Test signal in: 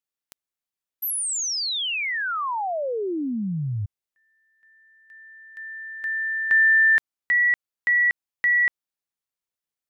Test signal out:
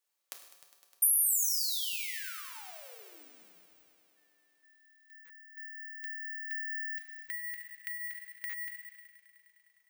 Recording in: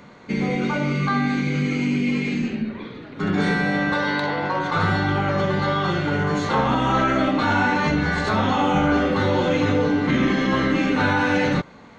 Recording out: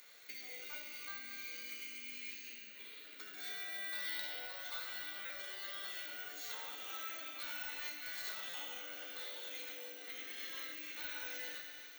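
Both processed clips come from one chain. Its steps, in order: bell 980 Hz -12.5 dB 0.59 oct; FDN reverb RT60 0.99 s, low-frequency decay 0.75×, high-frequency decay 1×, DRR 2.5 dB; compressor 3:1, threshold -32 dBFS; differentiator; on a send: multi-head echo 0.102 s, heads all three, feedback 68%, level -18.5 dB; on the sum: careless resampling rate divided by 2×, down none, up zero stuff; HPF 380 Hz 12 dB/oct; stuck buffer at 5.25/8.49, samples 256, times 7

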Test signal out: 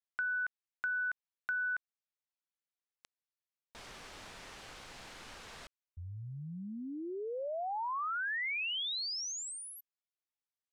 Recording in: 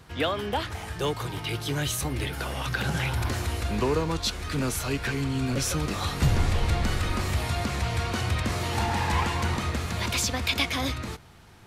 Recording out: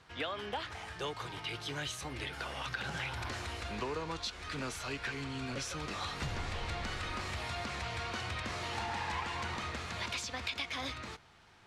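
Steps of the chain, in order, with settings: low shelf 470 Hz -11.5 dB; compressor, threshold -29 dBFS; air absorption 73 m; gain -3.5 dB

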